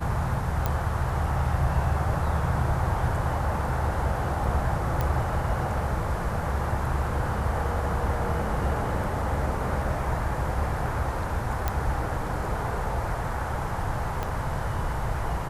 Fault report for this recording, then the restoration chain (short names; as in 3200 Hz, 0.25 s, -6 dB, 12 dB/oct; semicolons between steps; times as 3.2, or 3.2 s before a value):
0.66 pop -12 dBFS
5.01 pop -14 dBFS
11.68 pop -11 dBFS
14.23 pop -16 dBFS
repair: de-click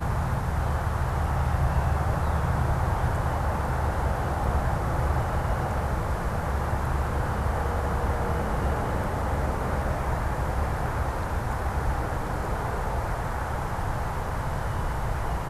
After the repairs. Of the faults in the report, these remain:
14.23 pop